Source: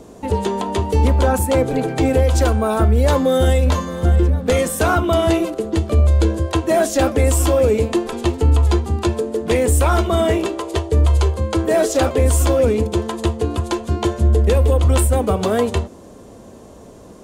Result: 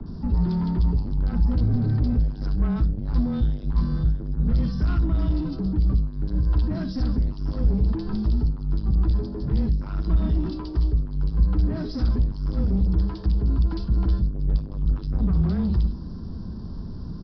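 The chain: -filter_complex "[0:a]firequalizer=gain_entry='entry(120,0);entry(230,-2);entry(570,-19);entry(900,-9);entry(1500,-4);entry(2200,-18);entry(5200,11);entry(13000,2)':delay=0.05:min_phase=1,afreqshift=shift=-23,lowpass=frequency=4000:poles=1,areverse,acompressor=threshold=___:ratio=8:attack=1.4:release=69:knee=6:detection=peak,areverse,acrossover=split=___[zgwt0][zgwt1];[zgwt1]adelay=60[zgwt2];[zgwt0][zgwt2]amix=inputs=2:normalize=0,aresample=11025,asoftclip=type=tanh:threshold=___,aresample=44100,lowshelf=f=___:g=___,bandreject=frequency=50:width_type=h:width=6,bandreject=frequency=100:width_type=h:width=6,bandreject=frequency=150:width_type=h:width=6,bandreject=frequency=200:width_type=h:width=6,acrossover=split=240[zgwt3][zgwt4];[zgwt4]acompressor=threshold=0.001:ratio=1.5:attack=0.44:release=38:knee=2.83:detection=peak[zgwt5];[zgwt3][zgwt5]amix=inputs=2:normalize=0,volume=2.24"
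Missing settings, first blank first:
0.0794, 2500, 0.0376, 220, 9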